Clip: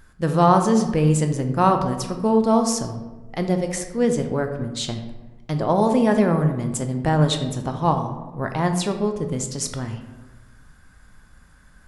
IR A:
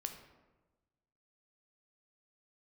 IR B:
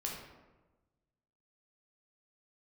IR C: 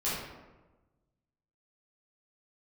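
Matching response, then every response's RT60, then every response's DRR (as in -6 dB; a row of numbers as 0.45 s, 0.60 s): A; 1.2 s, 1.2 s, 1.2 s; 5.0 dB, -2.5 dB, -11.0 dB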